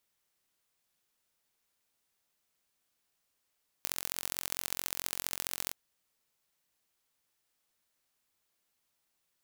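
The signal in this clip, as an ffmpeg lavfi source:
-f lavfi -i "aevalsrc='0.562*eq(mod(n,991),0)*(0.5+0.5*eq(mod(n,2973),0))':d=1.87:s=44100"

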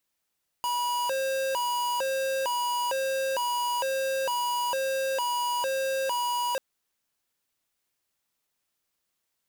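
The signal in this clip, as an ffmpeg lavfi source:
-f lavfi -i "aevalsrc='0.0398*(2*lt(mod((752*t+218/1.1*(0.5-abs(mod(1.1*t,1)-0.5))),1),0.5)-1)':d=5.94:s=44100"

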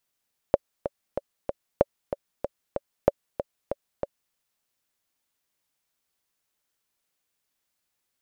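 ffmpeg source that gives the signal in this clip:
-f lavfi -i "aevalsrc='pow(10,(-3.5-10.5*gte(mod(t,4*60/189),60/189))/20)*sin(2*PI*565*mod(t,60/189))*exp(-6.91*mod(t,60/189)/0.03)':d=3.8:s=44100"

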